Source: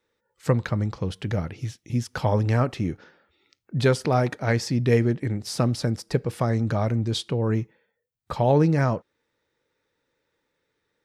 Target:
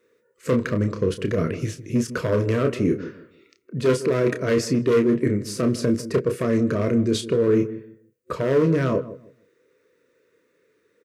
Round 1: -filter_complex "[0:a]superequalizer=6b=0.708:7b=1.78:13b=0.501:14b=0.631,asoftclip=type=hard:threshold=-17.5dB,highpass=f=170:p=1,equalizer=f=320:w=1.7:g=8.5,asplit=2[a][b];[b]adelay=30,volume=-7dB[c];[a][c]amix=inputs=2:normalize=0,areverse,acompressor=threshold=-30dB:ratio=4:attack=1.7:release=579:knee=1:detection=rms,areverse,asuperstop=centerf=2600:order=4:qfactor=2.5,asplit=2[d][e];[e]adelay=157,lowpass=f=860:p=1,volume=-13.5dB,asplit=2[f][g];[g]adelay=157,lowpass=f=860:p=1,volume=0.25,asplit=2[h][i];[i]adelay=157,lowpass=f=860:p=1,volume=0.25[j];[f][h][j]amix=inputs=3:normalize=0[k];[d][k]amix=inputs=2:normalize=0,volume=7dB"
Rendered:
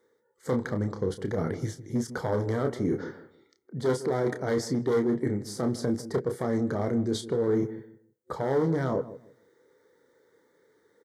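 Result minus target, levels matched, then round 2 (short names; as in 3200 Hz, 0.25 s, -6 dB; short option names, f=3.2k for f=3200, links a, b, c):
compressor: peak gain reduction +7 dB; 1000 Hz band +4.0 dB
-filter_complex "[0:a]superequalizer=6b=0.708:7b=1.78:13b=0.501:14b=0.631,asoftclip=type=hard:threshold=-17.5dB,highpass=f=170:p=1,equalizer=f=320:w=1.7:g=8.5,asplit=2[a][b];[b]adelay=30,volume=-7dB[c];[a][c]amix=inputs=2:normalize=0,areverse,acompressor=threshold=-21dB:ratio=4:attack=1.7:release=579:knee=1:detection=rms,areverse,asuperstop=centerf=810:order=4:qfactor=2.5,asplit=2[d][e];[e]adelay=157,lowpass=f=860:p=1,volume=-13.5dB,asplit=2[f][g];[g]adelay=157,lowpass=f=860:p=1,volume=0.25,asplit=2[h][i];[i]adelay=157,lowpass=f=860:p=1,volume=0.25[j];[f][h][j]amix=inputs=3:normalize=0[k];[d][k]amix=inputs=2:normalize=0,volume=7dB"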